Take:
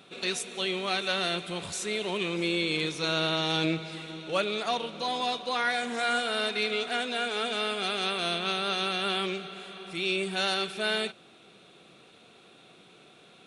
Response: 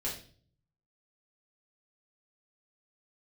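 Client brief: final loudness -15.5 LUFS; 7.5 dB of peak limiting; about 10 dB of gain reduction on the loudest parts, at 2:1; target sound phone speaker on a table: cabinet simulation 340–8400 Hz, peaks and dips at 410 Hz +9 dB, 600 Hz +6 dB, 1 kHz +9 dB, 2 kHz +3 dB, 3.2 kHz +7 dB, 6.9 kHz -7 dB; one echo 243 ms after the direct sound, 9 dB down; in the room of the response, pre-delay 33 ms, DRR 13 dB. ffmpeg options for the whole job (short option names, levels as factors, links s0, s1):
-filter_complex "[0:a]acompressor=threshold=0.00794:ratio=2,alimiter=level_in=2.24:limit=0.0631:level=0:latency=1,volume=0.447,aecho=1:1:243:0.355,asplit=2[s0][s1];[1:a]atrim=start_sample=2205,adelay=33[s2];[s1][s2]afir=irnorm=-1:irlink=0,volume=0.158[s3];[s0][s3]amix=inputs=2:normalize=0,highpass=f=340:w=0.5412,highpass=f=340:w=1.3066,equalizer=f=410:t=q:w=4:g=9,equalizer=f=600:t=q:w=4:g=6,equalizer=f=1000:t=q:w=4:g=9,equalizer=f=2000:t=q:w=4:g=3,equalizer=f=3200:t=q:w=4:g=7,equalizer=f=6900:t=q:w=4:g=-7,lowpass=f=8400:w=0.5412,lowpass=f=8400:w=1.3066,volume=10"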